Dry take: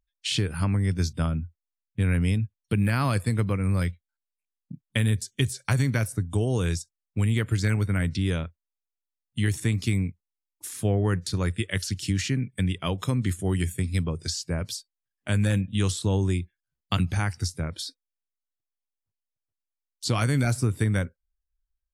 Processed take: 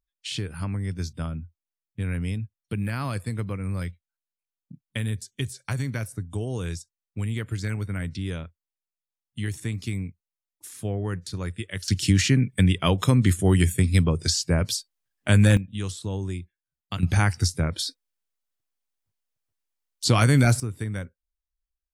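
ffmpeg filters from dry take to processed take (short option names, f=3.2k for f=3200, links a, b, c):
-af "asetnsamples=n=441:p=0,asendcmd='11.88 volume volume 6.5dB;15.57 volume volume -6dB;17.03 volume volume 5.5dB;20.6 volume volume -6.5dB',volume=-5dB"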